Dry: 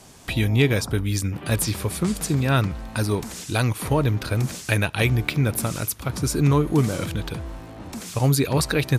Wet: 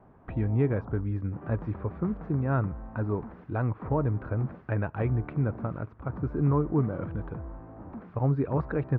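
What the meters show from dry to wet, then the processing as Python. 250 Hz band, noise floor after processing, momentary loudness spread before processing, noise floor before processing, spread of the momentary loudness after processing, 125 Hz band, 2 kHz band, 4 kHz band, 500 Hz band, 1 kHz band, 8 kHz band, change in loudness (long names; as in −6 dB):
−6.0 dB, −54 dBFS, 9 LU, −41 dBFS, 11 LU, −6.0 dB, −14.5 dB, below −35 dB, −6.0 dB, −6.5 dB, below −40 dB, −7.0 dB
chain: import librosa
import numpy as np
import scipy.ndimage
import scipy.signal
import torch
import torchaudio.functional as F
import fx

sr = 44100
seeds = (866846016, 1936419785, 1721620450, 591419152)

y = scipy.signal.sosfilt(scipy.signal.butter(4, 1400.0, 'lowpass', fs=sr, output='sos'), x)
y = F.gain(torch.from_numpy(y), -6.0).numpy()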